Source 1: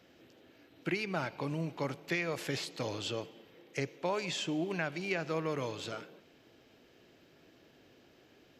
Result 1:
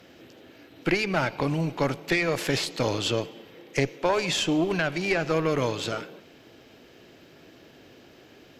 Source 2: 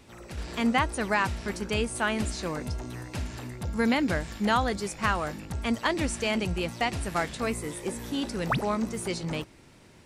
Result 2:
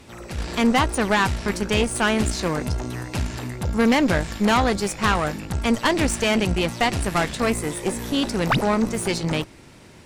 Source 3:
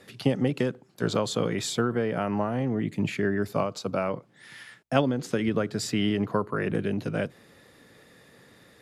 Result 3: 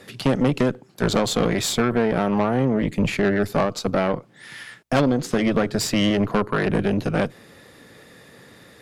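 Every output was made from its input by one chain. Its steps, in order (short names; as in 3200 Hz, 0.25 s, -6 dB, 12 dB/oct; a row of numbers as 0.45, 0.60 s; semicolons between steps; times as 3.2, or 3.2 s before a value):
tube stage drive 24 dB, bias 0.7; normalise peaks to -9 dBFS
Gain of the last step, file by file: +14.0, +11.5, +11.0 dB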